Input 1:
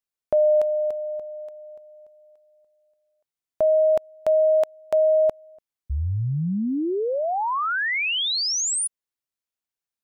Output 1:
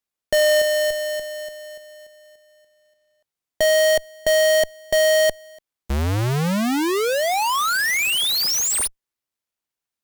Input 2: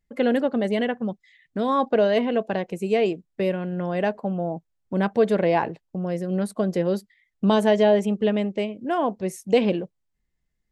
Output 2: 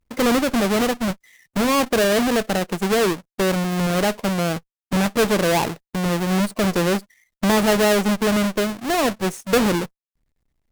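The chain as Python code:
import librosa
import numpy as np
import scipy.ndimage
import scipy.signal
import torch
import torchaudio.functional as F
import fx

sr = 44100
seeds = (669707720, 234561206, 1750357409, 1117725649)

y = fx.halfwave_hold(x, sr)
y = fx.cheby_harmonics(y, sr, harmonics=(5, 8), levels_db=(-19, -20), full_scale_db=-8.0)
y = F.gain(torch.from_numpy(y), -2.5).numpy()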